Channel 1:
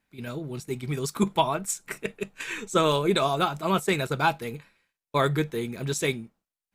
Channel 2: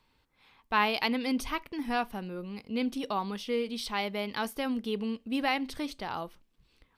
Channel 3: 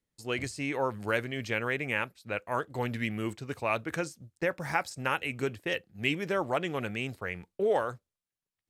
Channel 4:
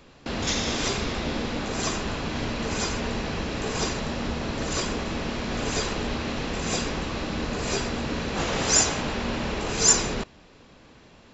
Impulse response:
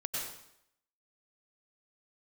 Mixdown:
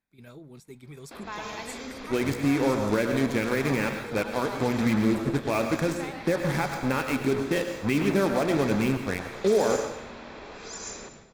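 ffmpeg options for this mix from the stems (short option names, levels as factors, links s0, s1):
-filter_complex "[0:a]acompressor=threshold=0.0447:ratio=6,volume=0.251,asplit=2[s0][s1];[1:a]adelay=550,volume=0.355,asplit=2[s2][s3];[s3]volume=0.531[s4];[2:a]equalizer=f=240:t=o:w=2.2:g=12.5,bandreject=f=59.69:t=h:w=4,bandreject=f=119.38:t=h:w=4,bandreject=f=179.07:t=h:w=4,bandreject=f=238.76:t=h:w=4,bandreject=f=298.45:t=h:w=4,bandreject=f=358.14:t=h:w=4,bandreject=f=417.83:t=h:w=4,bandreject=f=477.52:t=h:w=4,bandreject=f=537.21:t=h:w=4,bandreject=f=596.9:t=h:w=4,bandreject=f=656.59:t=h:w=4,bandreject=f=716.28:t=h:w=4,bandreject=f=775.97:t=h:w=4,bandreject=f=835.66:t=h:w=4,bandreject=f=895.35:t=h:w=4,bandreject=f=955.04:t=h:w=4,bandreject=f=1014.73:t=h:w=4,bandreject=f=1074.42:t=h:w=4,bandreject=f=1134.11:t=h:w=4,bandreject=f=1193.8:t=h:w=4,bandreject=f=1253.49:t=h:w=4,bandreject=f=1313.18:t=h:w=4,bandreject=f=1372.87:t=h:w=4,bandreject=f=1432.56:t=h:w=4,bandreject=f=1492.25:t=h:w=4,bandreject=f=1551.94:t=h:w=4,bandreject=f=1611.63:t=h:w=4,bandreject=f=1671.32:t=h:w=4,bandreject=f=1731.01:t=h:w=4,bandreject=f=1790.7:t=h:w=4,bandreject=f=1850.39:t=h:w=4,bandreject=f=1910.08:t=h:w=4,acrusher=bits=4:mix=0:aa=0.5,adelay=1850,volume=0.891,asplit=2[s5][s6];[s6]volume=0.398[s7];[3:a]adelay=850,volume=0.299,asplit=2[s8][s9];[s9]volume=0.299[s10];[s1]apad=whole_len=537463[s11];[s8][s11]sidechaincompress=threshold=0.00501:ratio=8:attack=16:release=136[s12];[s2][s12]amix=inputs=2:normalize=0,highpass=280,lowpass=4400,acompressor=threshold=0.00794:ratio=6,volume=1[s13];[s0][s5]amix=inputs=2:normalize=0,aphaser=in_gain=1:out_gain=1:delay=4.3:decay=0.21:speed=0.78:type=sinusoidal,alimiter=limit=0.126:level=0:latency=1:release=173,volume=1[s14];[4:a]atrim=start_sample=2205[s15];[s4][s7][s10]amix=inputs=3:normalize=0[s16];[s16][s15]afir=irnorm=-1:irlink=0[s17];[s13][s14][s17]amix=inputs=3:normalize=0,bandreject=f=2900:w=7.2"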